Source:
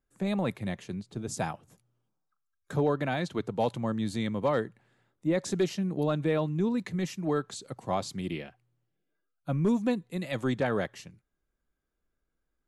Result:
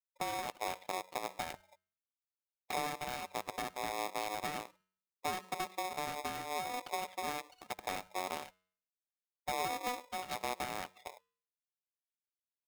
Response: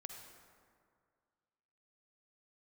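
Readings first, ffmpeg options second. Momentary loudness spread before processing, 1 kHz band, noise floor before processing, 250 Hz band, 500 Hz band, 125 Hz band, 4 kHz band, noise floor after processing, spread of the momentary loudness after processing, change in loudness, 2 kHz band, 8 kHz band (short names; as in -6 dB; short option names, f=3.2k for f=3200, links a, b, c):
10 LU, 0.0 dB, -82 dBFS, -20.0 dB, -12.5 dB, -23.0 dB, -1.0 dB, under -85 dBFS, 7 LU, -8.5 dB, -3.0 dB, -1.5 dB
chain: -filter_complex "[0:a]acompressor=threshold=-40dB:ratio=8,aeval=exprs='0.0422*(cos(1*acos(clip(val(0)/0.0422,-1,1)))-cos(1*PI/2))+0.0106*(cos(2*acos(clip(val(0)/0.0422,-1,1)))-cos(2*PI/2))+0.00299*(cos(5*acos(clip(val(0)/0.0422,-1,1)))-cos(5*PI/2))+0.000944*(cos(7*acos(clip(val(0)/0.0422,-1,1)))-cos(7*PI/2))+0.000596*(cos(8*acos(clip(val(0)/0.0422,-1,1)))-cos(8*PI/2))':c=same,aecho=1:1:62|124|186:0.1|0.043|0.0185,aresample=8000,aresample=44100,adynamicequalizer=threshold=0.002:dfrequency=400:dqfactor=1.3:tfrequency=400:tqfactor=1.3:attack=5:release=100:ratio=0.375:range=1.5:mode=cutabove:tftype=bell,asplit=2[a][b];[1:a]atrim=start_sample=2205,adelay=99[c];[b][c]afir=irnorm=-1:irlink=0,volume=-11.5dB[d];[a][d]amix=inputs=2:normalize=0,aeval=exprs='0.0447*(cos(1*acos(clip(val(0)/0.0447,-1,1)))-cos(1*PI/2))+0.000708*(cos(3*acos(clip(val(0)/0.0447,-1,1)))-cos(3*PI/2))+0.000631*(cos(5*acos(clip(val(0)/0.0447,-1,1)))-cos(5*PI/2))+0.02*(cos(6*acos(clip(val(0)/0.0447,-1,1)))-cos(6*PI/2))+0.001*(cos(7*acos(clip(val(0)/0.0447,-1,1)))-cos(7*PI/2))':c=same,afftfilt=real='re*gte(hypot(re,im),0.00631)':imag='im*gte(hypot(re,im),0.00631)':win_size=1024:overlap=0.75,equalizer=f=710:t=o:w=0.35:g=-10.5,bandreject=f=276.4:t=h:w=4,bandreject=f=552.8:t=h:w=4,bandreject=f=829.2:t=h:w=4,bandreject=f=1.1056k:t=h:w=4,bandreject=f=1.382k:t=h:w=4,bandreject=f=1.6584k:t=h:w=4,bandreject=f=1.9348k:t=h:w=4,bandreject=f=2.2112k:t=h:w=4,bandreject=f=2.4876k:t=h:w=4,bandreject=f=2.764k:t=h:w=4,bandreject=f=3.0404k:t=h:w=4,bandreject=f=3.3168k:t=h:w=4,bandreject=f=3.5932k:t=h:w=4,bandreject=f=3.8696k:t=h:w=4,bandreject=f=4.146k:t=h:w=4,bandreject=f=4.4224k:t=h:w=4,bandreject=f=4.6988k:t=h:w=4,bandreject=f=4.9752k:t=h:w=4,bandreject=f=5.2516k:t=h:w=4,bandreject=f=5.528k:t=h:w=4,bandreject=f=5.8044k:t=h:w=4,bandreject=f=6.0808k:t=h:w=4,bandreject=f=6.3572k:t=h:w=4,bandreject=f=6.6336k:t=h:w=4,bandreject=f=6.91k:t=h:w=4,bandreject=f=7.1864k:t=h:w=4,bandreject=f=7.4628k:t=h:w=4,bandreject=f=7.7392k:t=h:w=4,acrusher=bits=5:mode=log:mix=0:aa=0.000001,aeval=exprs='val(0)*sgn(sin(2*PI*740*n/s))':c=same,volume=-2.5dB"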